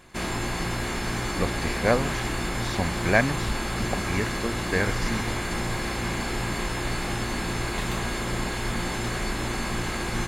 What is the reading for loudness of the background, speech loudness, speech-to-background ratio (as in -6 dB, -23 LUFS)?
-29.0 LUFS, -28.5 LUFS, 0.5 dB